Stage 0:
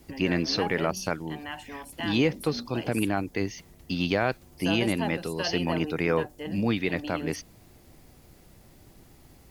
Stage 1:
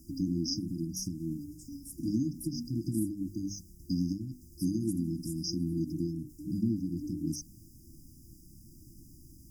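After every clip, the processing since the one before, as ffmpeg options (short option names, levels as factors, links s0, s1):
-af "acompressor=threshold=0.0501:ratio=4,bandreject=f=50:t=h:w=6,bandreject=f=100:t=h:w=6,bandreject=f=150:t=h:w=6,bandreject=f=200:t=h:w=6,bandreject=f=250:t=h:w=6,bandreject=f=300:t=h:w=6,afftfilt=real='re*(1-between(b*sr/4096,350,4800))':imag='im*(1-between(b*sr/4096,350,4800))':win_size=4096:overlap=0.75,volume=1.19"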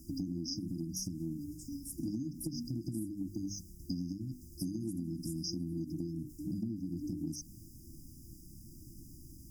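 -af "acompressor=threshold=0.0158:ratio=6,volume=1.19"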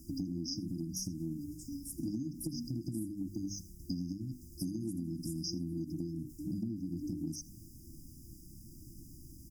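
-af "aecho=1:1:81:0.0841"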